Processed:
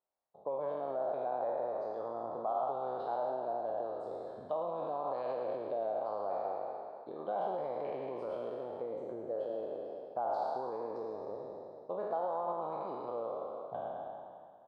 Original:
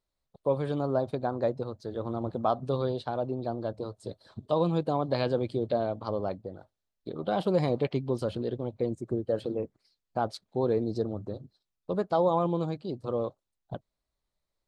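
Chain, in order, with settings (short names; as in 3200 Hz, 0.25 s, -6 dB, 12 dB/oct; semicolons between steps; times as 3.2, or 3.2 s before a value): spectral trails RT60 2.07 s; limiter -17.5 dBFS, peak gain reduction 7 dB; compressor 2.5:1, threshold -30 dBFS, peak gain reduction 5.5 dB; band-pass 760 Hz, Q 2; frequency-shifting echo 0.111 s, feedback 52%, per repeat +48 Hz, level -10 dB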